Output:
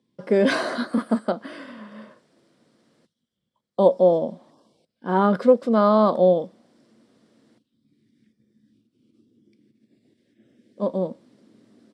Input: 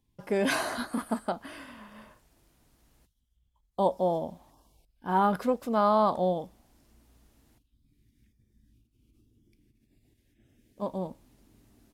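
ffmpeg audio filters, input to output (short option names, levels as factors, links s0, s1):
-af "highpass=f=150:w=0.5412,highpass=f=150:w=1.3066,equalizer=f=220:t=q:w=4:g=5,equalizer=f=360:t=q:w=4:g=3,equalizer=f=520:t=q:w=4:g=8,equalizer=f=840:t=q:w=4:g=-7,equalizer=f=2600:t=q:w=4:g=-6,equalizer=f=6600:t=q:w=4:g=-10,lowpass=f=7600:w=0.5412,lowpass=f=7600:w=1.3066,volume=1.88"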